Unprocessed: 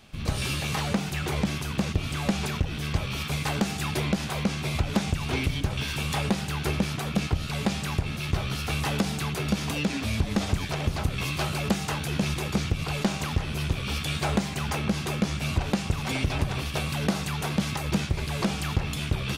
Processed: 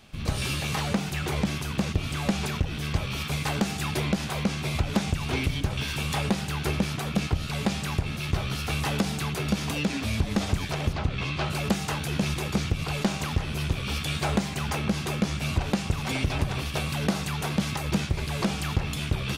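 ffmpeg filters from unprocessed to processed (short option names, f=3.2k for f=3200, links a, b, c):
-filter_complex "[0:a]asplit=3[a][b][c];[a]afade=t=out:st=10.92:d=0.02[d];[b]lowpass=4.3k,afade=t=in:st=10.92:d=0.02,afade=t=out:st=11.49:d=0.02[e];[c]afade=t=in:st=11.49:d=0.02[f];[d][e][f]amix=inputs=3:normalize=0"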